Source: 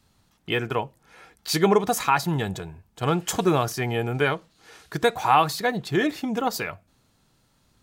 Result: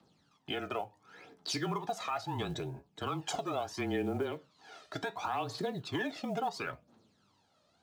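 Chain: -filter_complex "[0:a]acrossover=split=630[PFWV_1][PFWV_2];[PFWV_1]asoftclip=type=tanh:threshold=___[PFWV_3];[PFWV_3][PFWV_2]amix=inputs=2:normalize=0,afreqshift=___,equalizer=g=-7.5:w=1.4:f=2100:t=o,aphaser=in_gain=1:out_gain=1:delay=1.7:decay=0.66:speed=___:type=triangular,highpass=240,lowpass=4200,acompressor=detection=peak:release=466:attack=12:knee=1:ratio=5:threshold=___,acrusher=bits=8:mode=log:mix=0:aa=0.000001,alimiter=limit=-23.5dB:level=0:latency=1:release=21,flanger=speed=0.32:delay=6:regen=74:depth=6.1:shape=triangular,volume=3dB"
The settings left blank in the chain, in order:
-18.5dB, -26, 0.72, -29dB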